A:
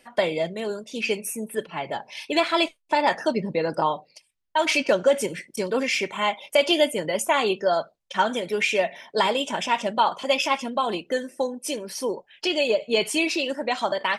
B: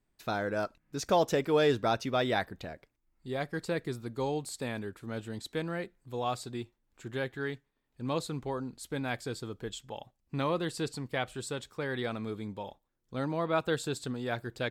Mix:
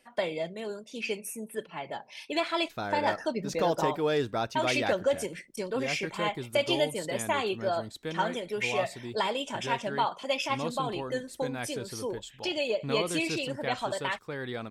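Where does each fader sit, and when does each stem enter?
-7.5 dB, -2.0 dB; 0.00 s, 2.50 s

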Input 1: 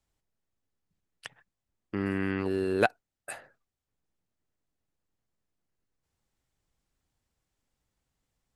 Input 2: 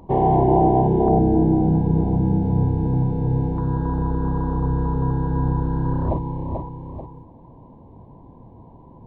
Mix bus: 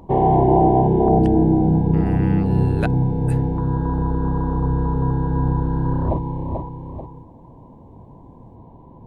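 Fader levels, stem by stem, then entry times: -2.5 dB, +1.5 dB; 0.00 s, 0.00 s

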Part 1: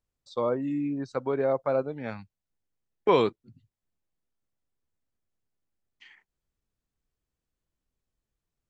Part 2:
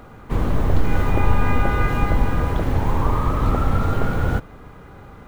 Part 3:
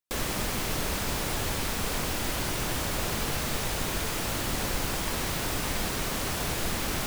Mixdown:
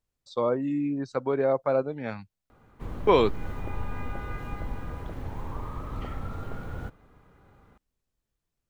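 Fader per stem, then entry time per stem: +1.5 dB, -16.0 dB, mute; 0.00 s, 2.50 s, mute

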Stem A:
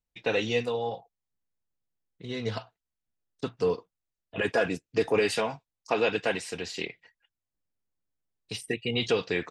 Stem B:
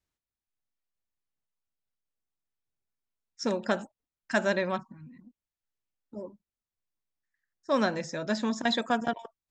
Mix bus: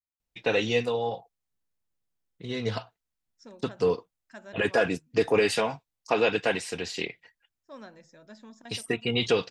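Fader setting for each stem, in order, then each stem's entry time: +2.0 dB, -19.5 dB; 0.20 s, 0.00 s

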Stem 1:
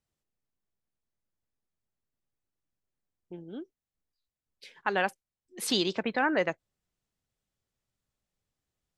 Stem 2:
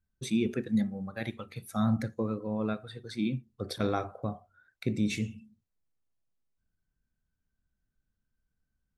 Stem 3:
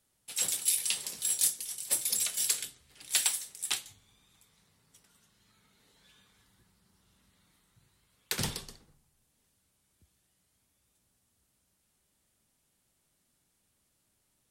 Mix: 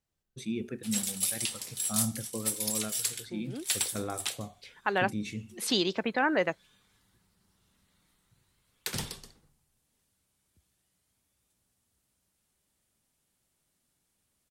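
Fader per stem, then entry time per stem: 0.0 dB, -6.0 dB, -2.0 dB; 0.00 s, 0.15 s, 0.55 s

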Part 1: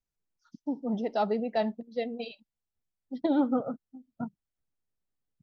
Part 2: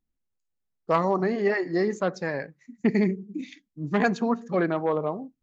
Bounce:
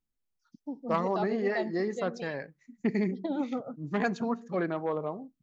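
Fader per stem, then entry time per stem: -6.0 dB, -6.0 dB; 0.00 s, 0.00 s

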